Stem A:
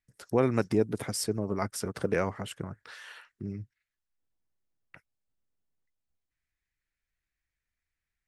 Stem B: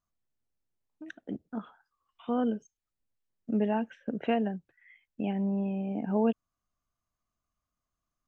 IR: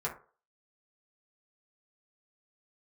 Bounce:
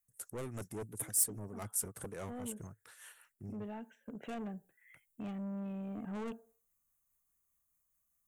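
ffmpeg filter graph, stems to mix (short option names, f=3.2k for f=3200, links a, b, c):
-filter_complex "[0:a]equalizer=f=110:t=o:w=0.7:g=5,tremolo=f=4.9:d=0.63,volume=-9dB[a];[1:a]volume=-6.5dB,afade=t=in:st=3.98:d=0.57:silence=0.446684,asplit=2[b][c];[c]volume=-19.5dB[d];[2:a]atrim=start_sample=2205[e];[d][e]afir=irnorm=-1:irlink=0[f];[a][b][f]amix=inputs=3:normalize=0,asoftclip=type=tanh:threshold=-37.5dB,aexciter=amount=11.7:drive=3.3:freq=7.1k"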